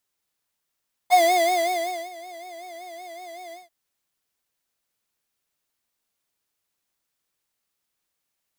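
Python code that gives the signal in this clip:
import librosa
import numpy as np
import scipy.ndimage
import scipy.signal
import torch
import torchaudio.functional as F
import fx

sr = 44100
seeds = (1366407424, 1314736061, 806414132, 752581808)

y = fx.sub_patch_vibrato(sr, seeds[0], note=77, wave='square', wave2='saw', interval_st=19, detune_cents=16, level2_db=-9.0, sub_db=-17.5, noise_db=-13.0, kind='highpass', cutoff_hz=130.0, q=2.4, env_oct=3.0, env_decay_s=0.1, env_sustain_pct=50, attack_ms=29.0, decay_s=0.97, sustain_db=-22, release_s=0.16, note_s=2.43, lfo_hz=5.3, vibrato_cents=96)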